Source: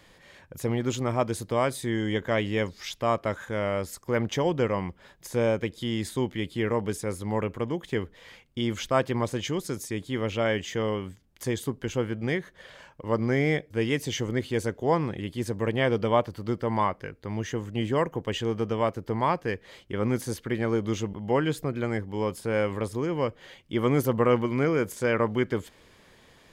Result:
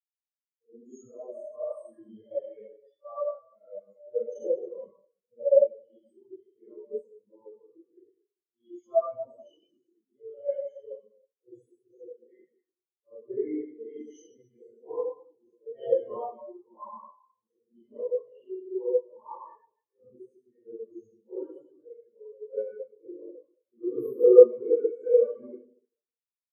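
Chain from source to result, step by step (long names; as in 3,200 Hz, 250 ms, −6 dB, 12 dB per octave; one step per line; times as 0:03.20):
random phases in long frames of 200 ms
low-pass that shuts in the quiet parts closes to 2,600 Hz, open at −22 dBFS
0:18.32–0:19.00: frequency shifter −80 Hz
bass and treble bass −9 dB, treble +15 dB
in parallel at −3.5 dB: centre clipping without the shift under −28.5 dBFS
on the sum: convolution reverb RT60 2.1 s, pre-delay 30 ms, DRR −5.5 dB
every bin expanded away from the loudest bin 4 to 1
level −1 dB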